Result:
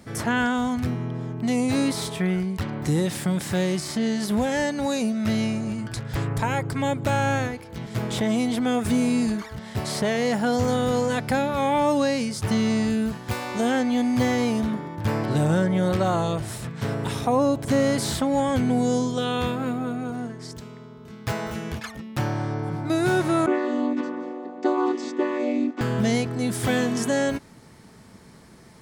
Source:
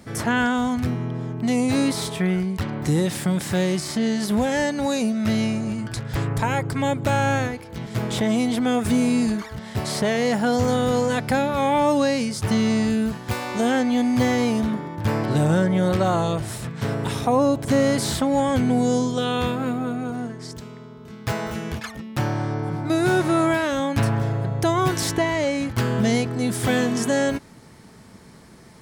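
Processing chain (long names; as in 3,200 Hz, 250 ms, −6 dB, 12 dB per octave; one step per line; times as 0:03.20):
0:23.46–0:25.81: channel vocoder with a chord as carrier minor triad, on B3
level −2 dB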